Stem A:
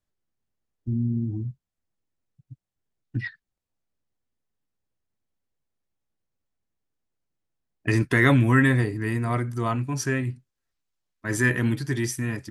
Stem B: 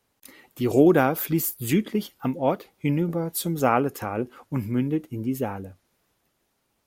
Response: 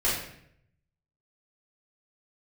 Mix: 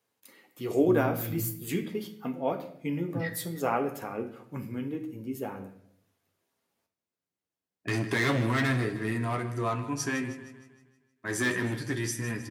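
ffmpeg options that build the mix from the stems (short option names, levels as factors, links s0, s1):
-filter_complex "[0:a]asoftclip=type=hard:threshold=0.106,volume=1.06,asplit=3[s0][s1][s2];[s1]volume=0.0944[s3];[s2]volume=0.224[s4];[1:a]volume=0.596,asplit=2[s5][s6];[s6]volume=0.141[s7];[2:a]atrim=start_sample=2205[s8];[s3][s7]amix=inputs=2:normalize=0[s9];[s9][s8]afir=irnorm=-1:irlink=0[s10];[s4]aecho=0:1:156|312|468|624|780|936|1092:1|0.49|0.24|0.118|0.0576|0.0282|0.0138[s11];[s0][s5][s10][s11]amix=inputs=4:normalize=0,highpass=140,flanger=delay=8.8:depth=3.7:regen=-37:speed=0.23:shape=triangular"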